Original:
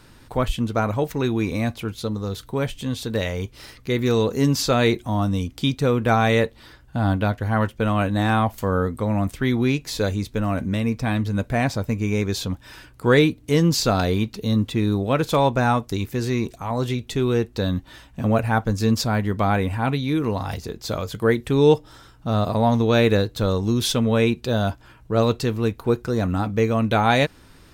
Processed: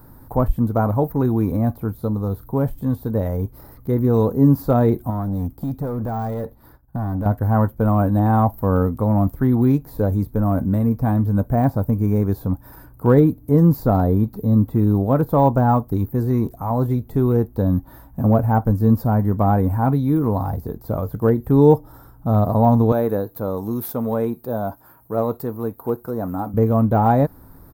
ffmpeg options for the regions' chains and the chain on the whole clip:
-filter_complex "[0:a]asettb=1/sr,asplit=3[a][b][c];[a]atrim=end=5.104[d];[b]atrim=start=5.1:end=7.26,asetpts=PTS-STARTPTS,afade=t=in:d=0.004:c=qsin,afade=t=out:st=2.156:d=0.004:c=qsin,agate=range=-33dB:threshold=-43dB:ratio=3:release=100:detection=peak,acompressor=threshold=-23dB:ratio=3:attack=3.2:release=140:knee=1:detection=peak,asoftclip=type=hard:threshold=-25dB[e];[c]atrim=start=7.256[f];[d][e]acrossfade=d=0.004:c1=hsin:c2=qsin[g];[g][f]acrossfade=d=0.004:c1=qsin:c2=hsin,asettb=1/sr,asplit=3[h][i][j];[h]atrim=end=22.924[k];[i]atrim=start=22.92:end=26.54,asetpts=PTS-STARTPTS,afade=t=in:d=0.004:c=qsin,afade=t=out:st=3.616:d=0.004:c=qsin,highpass=f=460:p=1,highshelf=f=5.2k:g=8.5[l];[j]atrim=start=26.536[m];[k][l]acrossfade=d=0.004:c1=hsin:c2=qsin[n];[n][m]acrossfade=d=0.004:c1=qsin:c2=hsin,firequalizer=gain_entry='entry(150,0);entry(340,-5);entry(820,0);entry(2800,-29);entry(4200,-19);entry(6400,-19);entry(14000,12)':delay=0.05:min_phase=1,deesser=0.95,equalizer=f=280:t=o:w=0.26:g=4.5,volume=5.5dB"

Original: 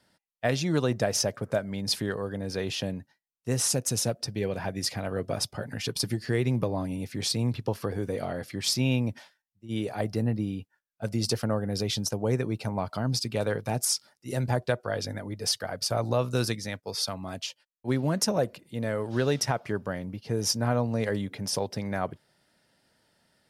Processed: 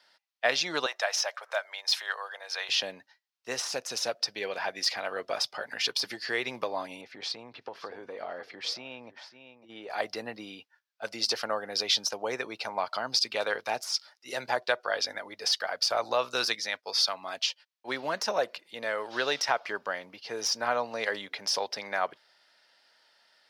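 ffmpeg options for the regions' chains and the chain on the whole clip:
-filter_complex "[0:a]asettb=1/sr,asplit=3[a][b][c];[a]atrim=end=0.864[d];[b]atrim=start=0.86:end=2.69,asetpts=PTS-STARTPTS,afade=t=in:d=0.004:c=qsin,afade=t=out:st=1.826:d=0.004:c=qsin,highpass=f=660:w=0.5412,highpass=f=660:w=1.3066,bandreject=f=4.7k:w=12[e];[c]atrim=start=2.686[f];[d][e]acrossfade=d=0.004:c1=hsin:c2=qsin[g];[g][f]acrossfade=d=0.004:c1=qsin:c2=hsin,asettb=1/sr,asplit=3[h][i][j];[h]atrim=end=7.014[k];[i]atrim=start=7.01:end=9.9,asetpts=PTS-STARTPTS,afade=t=in:d=0.004:c=qsin,afade=t=out:st=2.886:d=0.004:c=qsin,lowpass=f=1.1k:p=1,aecho=1:1:552:0.133,atrim=end_sample=127449,acompressor=threshold=-31dB:ratio=3:attack=3.2:release=140:knee=1:detection=peak[l];[j]atrim=start=9.896[m];[k][l]acrossfade=d=0.004:c1=hsin:c2=qsin[n];[n][m]acrossfade=d=0.004:c1=qsin:c2=hsin,deesser=0.55,highpass=800,highshelf=f=6.6k:t=q:w=1.5:g=-9.5,volume=5.5dB"

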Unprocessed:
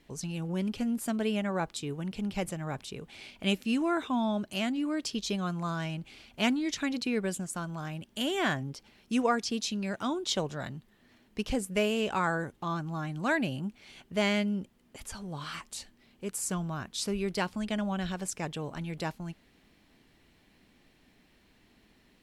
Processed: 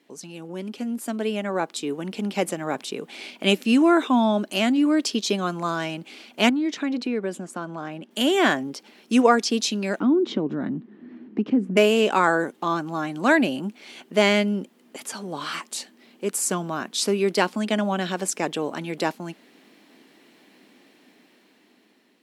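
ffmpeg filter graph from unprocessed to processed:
-filter_complex "[0:a]asettb=1/sr,asplit=3[a][b][c];[a]atrim=end=6.494[d];[b]atrim=start=6.49:end=8.11,asetpts=PTS-STARTPTS,afade=t=in:d=0.004:c=qsin,afade=t=out:st=1.616:d=0.004:c=qsin,lowpass=f=1.9k:p=1,acompressor=threshold=-35dB:ratio=2:attack=3.2:release=140:knee=1:detection=peak[e];[c]atrim=start=8.106[f];[d][e]acrossfade=d=0.004:c1=hsin:c2=qsin[g];[g][f]acrossfade=d=0.004:c1=qsin:c2=hsin,asettb=1/sr,asplit=3[h][i][j];[h]atrim=end=10.004[k];[i]atrim=start=10:end=11.77,asetpts=PTS-STARTPTS,afade=t=in:d=0.004:c=qsin,afade=t=out:st=1.766:d=0.004:c=qsin,lowpass=1.8k,lowshelf=f=410:t=q:w=1.5:g=11,acompressor=threshold=-30dB:ratio=3:attack=3.2:release=140:knee=1:detection=peak[l];[j]atrim=start=11.766[m];[k][l]acrossfade=d=0.004:c1=hsin:c2=qsin[n];[n][m]acrossfade=d=0.004:c1=qsin:c2=hsin,highpass=f=250:w=0.5412,highpass=f=250:w=1.3066,lowshelf=f=370:g=6.5,dynaudnorm=f=680:g=5:m=9.5dB"

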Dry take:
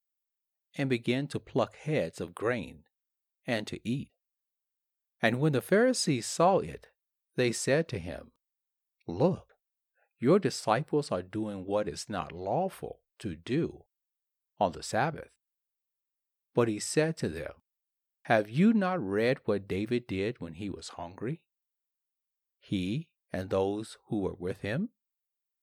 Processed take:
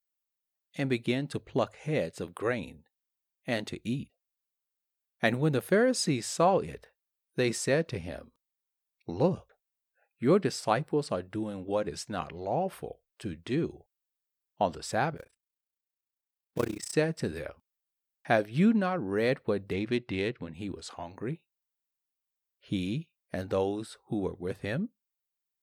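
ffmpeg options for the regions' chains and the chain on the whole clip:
-filter_complex "[0:a]asettb=1/sr,asplit=3[a][b][c];[a]atrim=end=15.174[d];[b]atrim=start=15.17:end=16.94,asetpts=PTS-STARTPTS,afade=t=in:d=0.004:c=qsin,afade=t=out:st=1.766:d=0.004:c=qsin,acrusher=bits=4:mode=log:mix=0:aa=0.000001,tremolo=f=30:d=0.974[e];[c]atrim=start=16.936[f];[d][e]acrossfade=d=0.004:c1=hsin:c2=qsin[g];[g][f]acrossfade=d=0.004:c1=qsin:c2=hsin,asettb=1/sr,asplit=3[h][i][j];[h]atrim=end=19.734[k];[i]atrim=start=19.73:end=20.54,asetpts=PTS-STARTPTS,afade=t=in:d=0.004:c=qsin,afade=t=out:st=0.806:d=0.004:c=qsin,highshelf=f=2.1k:g=12,adynamicsmooth=sensitivity=1:basefreq=2.6k[l];[j]atrim=start=20.536[m];[k][l]acrossfade=d=0.004:c1=hsin:c2=qsin[n];[n][m]acrossfade=d=0.004:c1=qsin:c2=hsin"

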